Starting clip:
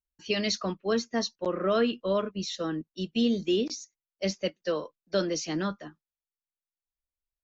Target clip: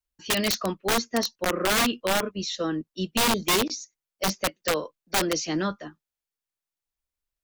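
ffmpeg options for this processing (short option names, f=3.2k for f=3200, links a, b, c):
-af "adynamicequalizer=threshold=0.00501:dfrequency=180:dqfactor=2.5:tfrequency=180:tqfactor=2.5:attack=5:release=100:ratio=0.375:range=2:mode=cutabove:tftype=bell,aeval=exprs='(mod(11.2*val(0)+1,2)-1)/11.2':c=same,volume=4dB"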